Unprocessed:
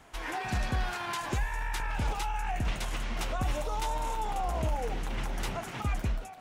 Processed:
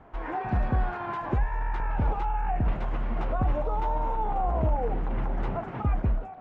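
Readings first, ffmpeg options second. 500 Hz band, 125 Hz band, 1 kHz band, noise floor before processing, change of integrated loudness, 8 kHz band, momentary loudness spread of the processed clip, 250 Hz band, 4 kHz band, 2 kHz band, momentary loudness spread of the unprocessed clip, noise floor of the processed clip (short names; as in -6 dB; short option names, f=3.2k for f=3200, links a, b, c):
+5.0 dB, +5.5 dB, +4.0 dB, -42 dBFS, +4.0 dB, under -25 dB, 5 LU, +5.5 dB, -14.0 dB, -3.5 dB, 4 LU, -39 dBFS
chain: -af "lowpass=1.1k,volume=5.5dB"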